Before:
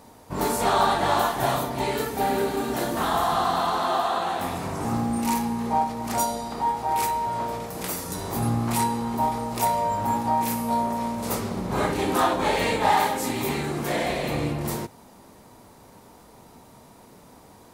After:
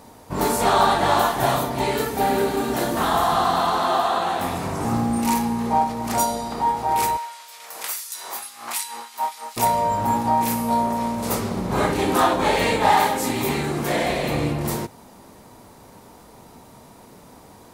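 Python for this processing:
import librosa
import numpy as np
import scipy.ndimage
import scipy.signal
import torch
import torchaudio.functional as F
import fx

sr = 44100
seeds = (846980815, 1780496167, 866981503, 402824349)

y = fx.filter_lfo_highpass(x, sr, shape='sine', hz=fx.line((7.16, 1.1), (9.56, 5.3)), low_hz=870.0, high_hz=3100.0, q=0.71, at=(7.16, 9.56), fade=0.02)
y = y * librosa.db_to_amplitude(3.5)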